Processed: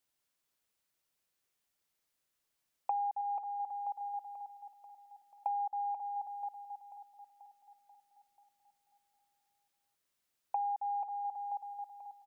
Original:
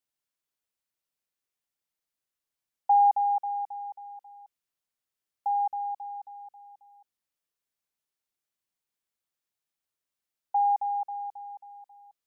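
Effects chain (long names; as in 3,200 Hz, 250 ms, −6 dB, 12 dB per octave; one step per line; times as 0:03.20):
0:03.21–0:04.01: parametric band 750 Hz −4 dB 0.59 octaves
downward compressor 8 to 1, threshold −39 dBFS, peak gain reduction 20 dB
repeating echo 487 ms, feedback 55%, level −11.5 dB
level +5 dB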